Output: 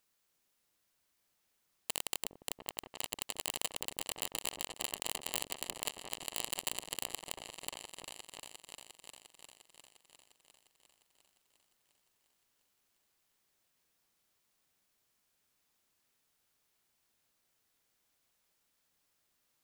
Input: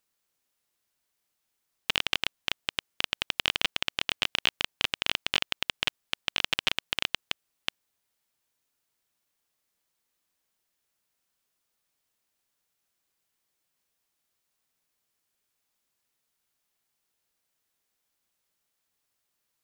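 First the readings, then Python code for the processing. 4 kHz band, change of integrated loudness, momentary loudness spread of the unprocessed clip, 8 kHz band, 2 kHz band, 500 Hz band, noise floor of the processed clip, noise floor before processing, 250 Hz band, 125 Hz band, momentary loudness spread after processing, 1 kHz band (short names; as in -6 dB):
-13.0 dB, -9.5 dB, 7 LU, +4.5 dB, -15.5 dB, -4.5 dB, -79 dBFS, -80 dBFS, -7.0 dB, -10.0 dB, 15 LU, -7.5 dB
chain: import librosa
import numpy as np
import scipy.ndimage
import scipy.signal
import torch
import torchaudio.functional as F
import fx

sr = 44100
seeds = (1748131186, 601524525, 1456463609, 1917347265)

y = (np.mod(10.0 ** (21.5 / 20.0) * x + 1.0, 2.0) - 1.0) / 10.0 ** (21.5 / 20.0)
y = fx.echo_opening(y, sr, ms=352, hz=400, octaves=2, feedback_pct=70, wet_db=-3)
y = F.gain(torch.from_numpy(y), 1.0).numpy()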